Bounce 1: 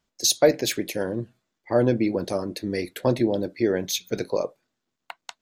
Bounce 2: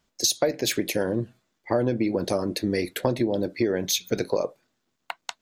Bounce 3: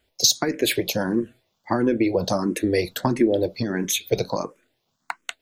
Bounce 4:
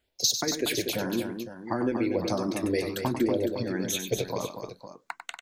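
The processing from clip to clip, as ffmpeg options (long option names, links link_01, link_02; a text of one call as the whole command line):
ffmpeg -i in.wav -af "acompressor=threshold=-25dB:ratio=6,volume=5dB" out.wav
ffmpeg -i in.wav -filter_complex "[0:a]asplit=2[link_01][link_02];[link_02]afreqshift=1.5[link_03];[link_01][link_03]amix=inputs=2:normalize=1,volume=6.5dB" out.wav
ffmpeg -i in.wav -af "aecho=1:1:97|238|508:0.376|0.422|0.251,volume=-7dB" out.wav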